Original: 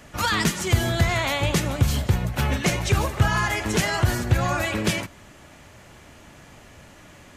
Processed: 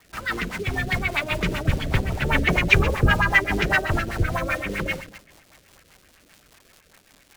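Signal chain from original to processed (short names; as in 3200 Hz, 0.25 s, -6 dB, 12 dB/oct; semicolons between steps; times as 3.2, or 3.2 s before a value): octaver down 2 oct, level -3 dB; Doppler pass-by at 2.74, 29 m/s, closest 29 m; high shelf 3000 Hz +11.5 dB; two-slope reverb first 0.95 s, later 2.7 s, DRR 4.5 dB; LFO low-pass sine 7.8 Hz 370–2400 Hz; in parallel at -3.5 dB: bit-crush 6-bit; on the sum: tilt shelf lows -3 dB, about 1400 Hz; crackle 500/s -36 dBFS; rotary speaker horn 5 Hz; gain -1.5 dB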